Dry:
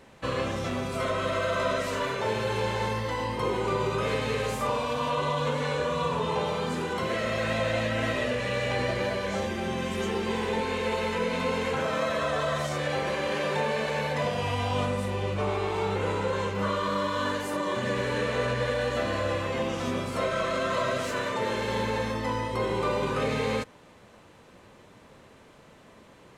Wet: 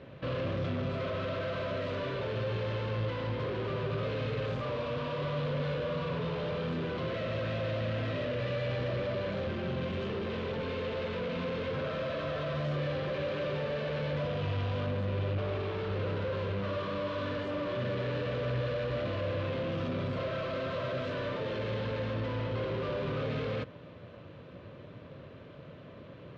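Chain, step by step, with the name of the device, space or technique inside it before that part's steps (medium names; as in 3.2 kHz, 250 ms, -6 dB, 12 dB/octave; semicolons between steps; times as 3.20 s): guitar amplifier (valve stage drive 39 dB, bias 0.55; tone controls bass +13 dB, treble -1 dB; cabinet simulation 110–3800 Hz, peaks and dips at 210 Hz -8 dB, 570 Hz +7 dB, 840 Hz -9 dB, 2 kHz -4 dB); trim +3.5 dB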